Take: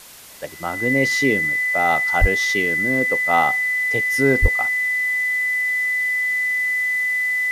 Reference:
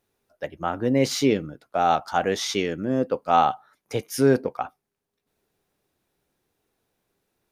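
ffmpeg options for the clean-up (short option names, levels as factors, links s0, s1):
-filter_complex "[0:a]bandreject=f=2000:w=30,asplit=3[s0][s1][s2];[s0]afade=t=out:st=2.2:d=0.02[s3];[s1]highpass=f=140:w=0.5412,highpass=f=140:w=1.3066,afade=t=in:st=2.2:d=0.02,afade=t=out:st=2.32:d=0.02[s4];[s2]afade=t=in:st=2.32:d=0.02[s5];[s3][s4][s5]amix=inputs=3:normalize=0,asplit=3[s6][s7][s8];[s6]afade=t=out:st=4.41:d=0.02[s9];[s7]highpass=f=140:w=0.5412,highpass=f=140:w=1.3066,afade=t=in:st=4.41:d=0.02,afade=t=out:st=4.53:d=0.02[s10];[s8]afade=t=in:st=4.53:d=0.02[s11];[s9][s10][s11]amix=inputs=3:normalize=0,afwtdn=0.0089"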